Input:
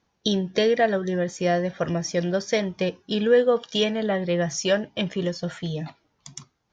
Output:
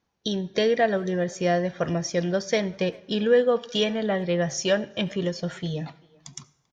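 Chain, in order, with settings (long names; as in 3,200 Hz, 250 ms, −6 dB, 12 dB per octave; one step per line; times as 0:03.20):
automatic gain control gain up to 4.5 dB
far-end echo of a speakerphone 390 ms, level −24 dB
on a send at −22 dB: convolution reverb RT60 1.0 s, pre-delay 69 ms
on the sum: level −5 dB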